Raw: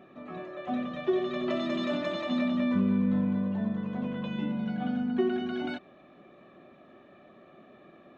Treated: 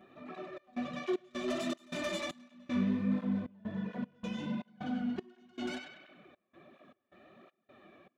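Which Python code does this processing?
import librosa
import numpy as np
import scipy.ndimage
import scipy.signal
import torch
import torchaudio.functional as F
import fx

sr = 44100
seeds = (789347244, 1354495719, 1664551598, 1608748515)

p1 = fx.tracing_dist(x, sr, depth_ms=0.083)
p2 = np.clip(p1, -10.0 ** (-29.5 / 20.0), 10.0 ** (-29.5 / 20.0))
p3 = p1 + F.gain(torch.from_numpy(p2), -8.0).numpy()
p4 = fx.high_shelf(p3, sr, hz=3800.0, db=6.5)
p5 = fx.echo_banded(p4, sr, ms=98, feedback_pct=58, hz=2100.0, wet_db=-4.0)
p6 = fx.step_gate(p5, sr, bpm=78, pattern='xxx.xx.xx.xx..x', floor_db=-24.0, edge_ms=4.5)
p7 = fx.flanger_cancel(p6, sr, hz=1.4, depth_ms=7.8)
y = F.gain(torch.from_numpy(p7), -5.0).numpy()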